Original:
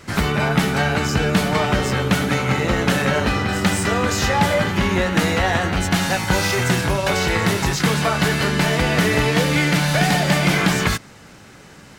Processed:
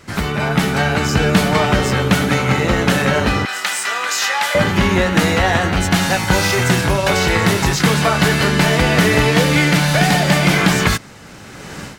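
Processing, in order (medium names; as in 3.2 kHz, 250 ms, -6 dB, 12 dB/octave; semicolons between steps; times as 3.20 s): 3.45–4.55 s: high-pass 1.1 kHz 12 dB/octave; level rider gain up to 16.5 dB; trim -1 dB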